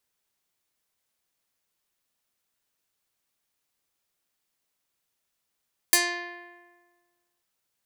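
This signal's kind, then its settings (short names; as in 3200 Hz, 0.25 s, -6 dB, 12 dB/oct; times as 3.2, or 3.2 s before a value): plucked string F4, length 1.49 s, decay 1.51 s, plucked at 0.26, medium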